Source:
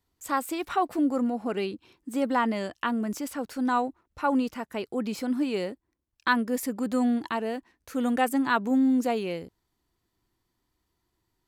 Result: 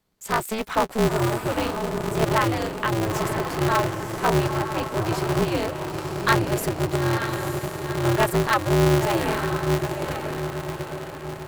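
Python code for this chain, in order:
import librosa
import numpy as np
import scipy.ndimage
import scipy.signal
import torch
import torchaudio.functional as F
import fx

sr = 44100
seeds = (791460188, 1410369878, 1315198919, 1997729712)

y = fx.bandpass_q(x, sr, hz=170.0, q=1.2, at=(6.95, 8.02), fade=0.02)
y = fx.echo_diffused(y, sr, ms=936, feedback_pct=52, wet_db=-5)
y = y * np.sign(np.sin(2.0 * np.pi * 110.0 * np.arange(len(y)) / sr))
y = y * librosa.db_to_amplitude(3.5)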